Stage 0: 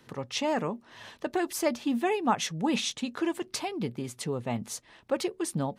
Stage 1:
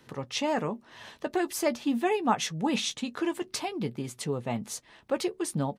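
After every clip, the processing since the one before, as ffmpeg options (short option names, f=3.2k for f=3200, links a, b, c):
-filter_complex "[0:a]asplit=2[a][b];[b]adelay=14,volume=-12dB[c];[a][c]amix=inputs=2:normalize=0"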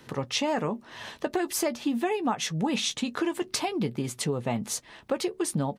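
-af "acompressor=threshold=-30dB:ratio=6,volume=6dB"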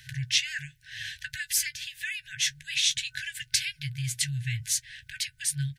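-af "afftfilt=real='re*(1-between(b*sr/4096,140,1500))':imag='im*(1-between(b*sr/4096,140,1500))':win_size=4096:overlap=0.75,volume=5dB"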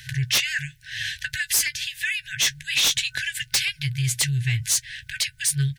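-af "aeval=exprs='0.335*sin(PI/2*3.16*val(0)/0.335)':c=same,volume=-5.5dB"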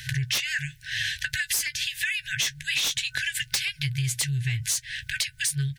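-af "acompressor=threshold=-28dB:ratio=6,volume=3.5dB"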